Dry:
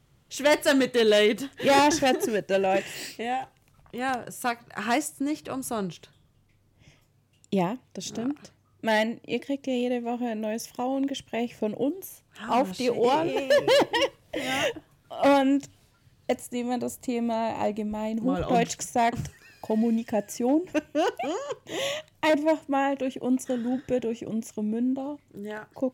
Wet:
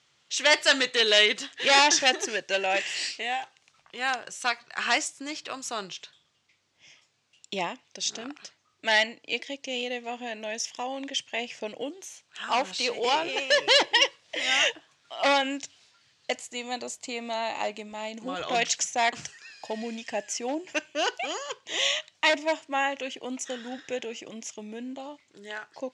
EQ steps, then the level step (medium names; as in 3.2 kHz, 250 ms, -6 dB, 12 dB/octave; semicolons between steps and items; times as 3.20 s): band-pass filter 4.5 kHz, Q 0.56; low-pass 7.4 kHz 24 dB/octave; +8.5 dB